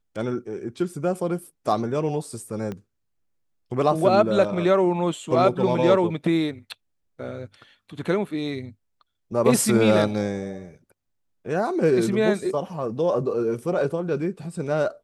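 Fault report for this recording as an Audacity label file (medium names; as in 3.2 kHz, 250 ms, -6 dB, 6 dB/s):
2.720000	2.720000	pop -20 dBFS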